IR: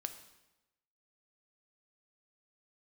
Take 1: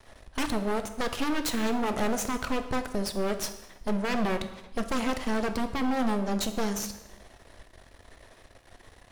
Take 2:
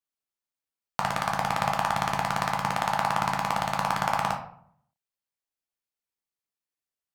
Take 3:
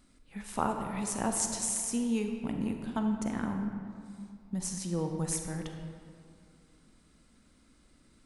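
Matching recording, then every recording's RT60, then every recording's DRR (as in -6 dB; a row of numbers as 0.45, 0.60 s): 1; 1.0, 0.60, 2.3 s; 7.5, 0.0, 4.0 dB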